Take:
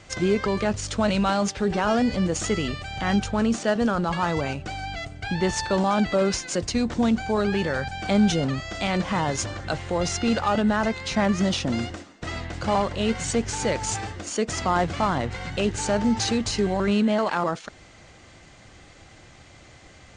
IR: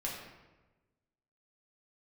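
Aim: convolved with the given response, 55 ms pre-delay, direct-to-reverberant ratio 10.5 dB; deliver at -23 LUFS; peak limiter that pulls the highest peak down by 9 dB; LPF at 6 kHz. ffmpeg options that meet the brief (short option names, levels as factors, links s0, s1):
-filter_complex "[0:a]lowpass=6000,alimiter=limit=0.106:level=0:latency=1,asplit=2[s0][s1];[1:a]atrim=start_sample=2205,adelay=55[s2];[s1][s2]afir=irnorm=-1:irlink=0,volume=0.224[s3];[s0][s3]amix=inputs=2:normalize=0,volume=1.88"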